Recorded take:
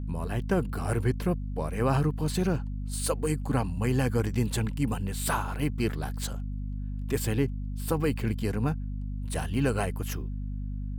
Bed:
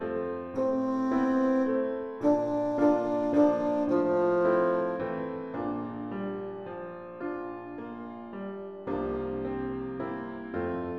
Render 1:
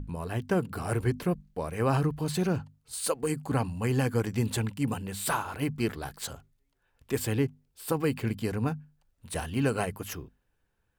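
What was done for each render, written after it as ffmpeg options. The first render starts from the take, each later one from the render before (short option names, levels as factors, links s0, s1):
-af "bandreject=f=50:t=h:w=6,bandreject=f=100:t=h:w=6,bandreject=f=150:t=h:w=6,bandreject=f=200:t=h:w=6,bandreject=f=250:t=h:w=6"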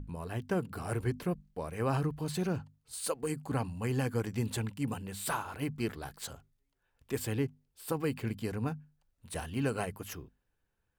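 -af "volume=0.562"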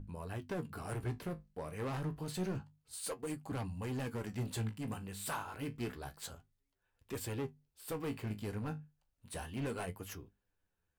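-af "asoftclip=type=hard:threshold=0.0316,flanger=delay=9.9:depth=9.9:regen=50:speed=0.29:shape=sinusoidal"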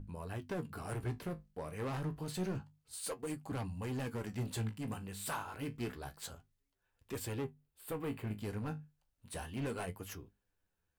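-filter_complex "[0:a]asettb=1/sr,asplit=3[s0][s1][s2];[s0]atrim=end=7.444[s3];[s1]atrim=start=7.44:end=8.4,asetpts=PTS-STARTPTS,afade=t=in:d=0.004:c=qsin,afade=t=out:st=0.956:d=0.004:c=qsin,equalizer=f=5500:w=1.5:g=-10[s4];[s2]atrim=start=8.396[s5];[s3][s4]acrossfade=d=0.004:c1=hsin:c2=qsin[s6];[s6][s5]acrossfade=d=0.004:c1=qsin:c2=hsin"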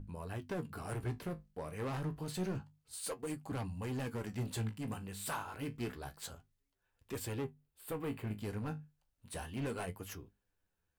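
-af anull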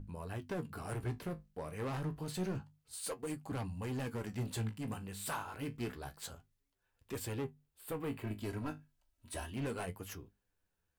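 -filter_complex "[0:a]asettb=1/sr,asplit=3[s0][s1][s2];[s0]atrim=end=8.214[s3];[s1]atrim=start=8.21:end=9.52,asetpts=PTS-STARTPTS,afade=t=in:d=0.004:c=qsin,afade=t=out:st=1.306:d=0.004:c=qsin,aecho=1:1:3.1:0.66,atrim=end_sample=57771[s4];[s2]atrim=start=9.516[s5];[s3][s4]acrossfade=d=0.004:c1=hsin:c2=qsin[s6];[s6][s5]acrossfade=d=0.004:c1=qsin:c2=hsin"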